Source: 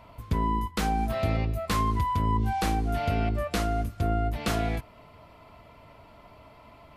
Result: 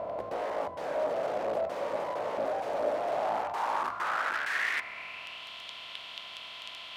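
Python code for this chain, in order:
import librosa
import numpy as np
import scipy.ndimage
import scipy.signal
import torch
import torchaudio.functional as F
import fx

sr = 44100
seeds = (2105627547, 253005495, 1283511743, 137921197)

y = fx.bin_compress(x, sr, power=0.4)
y = (np.mod(10.0 ** (21.0 / 20.0) * y + 1.0, 2.0) - 1.0) / 10.0 ** (21.0 / 20.0)
y = fx.filter_sweep_bandpass(y, sr, from_hz=580.0, to_hz=3200.0, start_s=2.93, end_s=5.49, q=4.7)
y = F.gain(torch.from_numpy(y), 6.0).numpy()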